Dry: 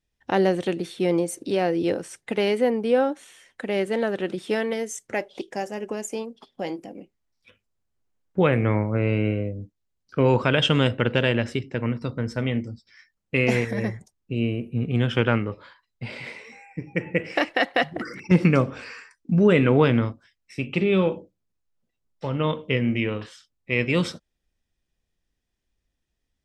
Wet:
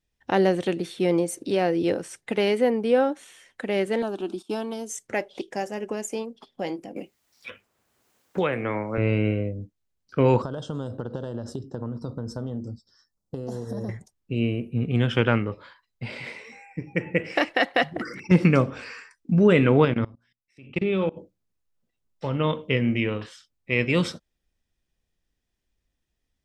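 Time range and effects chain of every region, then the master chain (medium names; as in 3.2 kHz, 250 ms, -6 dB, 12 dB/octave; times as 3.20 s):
4.02–4.90 s: gate -40 dBFS, range -16 dB + static phaser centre 520 Hz, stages 6
6.96–8.98 s: high-pass 450 Hz 6 dB/octave + treble shelf 10 kHz +4.5 dB + three bands compressed up and down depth 70%
10.42–13.89 s: compression 8:1, threshold -26 dBFS + Butterworth band-stop 2.3 kHz, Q 0.7
19.85–21.17 s: treble shelf 6.4 kHz -7.5 dB + hum notches 60/120/180/240 Hz + level held to a coarse grid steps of 23 dB
whole clip: none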